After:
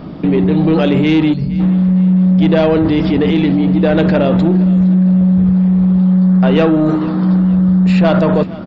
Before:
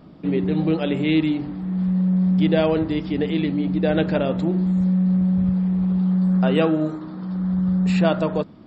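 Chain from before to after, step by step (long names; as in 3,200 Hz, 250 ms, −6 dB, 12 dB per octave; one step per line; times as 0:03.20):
time-frequency box erased 0:01.33–0:01.60, 250–4,100 Hz
in parallel at −3 dB: compressor whose output falls as the input rises −26 dBFS, ratio −0.5
on the sum: soft clipping −12.5 dBFS, distortion −20 dB
high-frequency loss of the air 71 metres
on a send: repeating echo 465 ms, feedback 46%, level −19 dB
on the sum: downsampling to 16,000 Hz
level +8.5 dB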